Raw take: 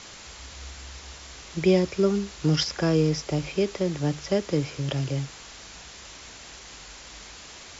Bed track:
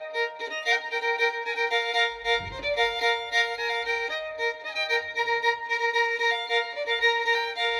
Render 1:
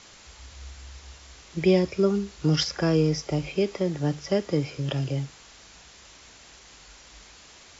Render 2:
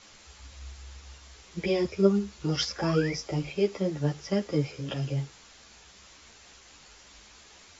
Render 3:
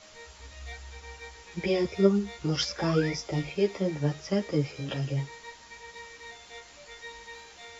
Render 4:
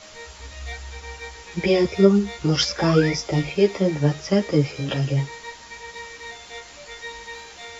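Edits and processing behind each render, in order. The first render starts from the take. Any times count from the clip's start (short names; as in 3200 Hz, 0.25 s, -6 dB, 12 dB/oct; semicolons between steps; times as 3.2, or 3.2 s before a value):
noise print and reduce 6 dB
2.78–3.14 painted sound rise 750–2400 Hz -36 dBFS; ensemble effect
add bed track -21.5 dB
gain +8 dB; limiter -3 dBFS, peak gain reduction 2.5 dB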